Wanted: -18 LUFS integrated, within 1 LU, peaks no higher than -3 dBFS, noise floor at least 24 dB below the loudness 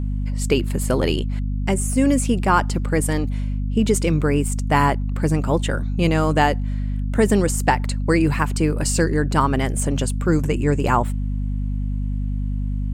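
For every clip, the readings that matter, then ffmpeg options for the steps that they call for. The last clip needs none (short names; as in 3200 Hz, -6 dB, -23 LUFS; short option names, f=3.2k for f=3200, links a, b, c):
hum 50 Hz; harmonics up to 250 Hz; hum level -20 dBFS; loudness -21.0 LUFS; peak -4.0 dBFS; loudness target -18.0 LUFS
-> -af "bandreject=f=50:t=h:w=6,bandreject=f=100:t=h:w=6,bandreject=f=150:t=h:w=6,bandreject=f=200:t=h:w=6,bandreject=f=250:t=h:w=6"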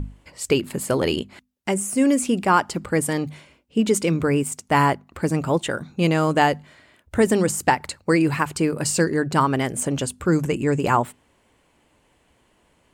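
hum none; loudness -21.5 LUFS; peak -4.5 dBFS; loudness target -18.0 LUFS
-> -af "volume=3.5dB,alimiter=limit=-3dB:level=0:latency=1"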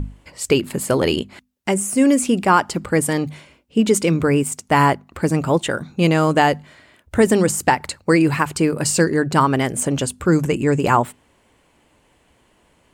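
loudness -18.5 LUFS; peak -3.0 dBFS; noise floor -59 dBFS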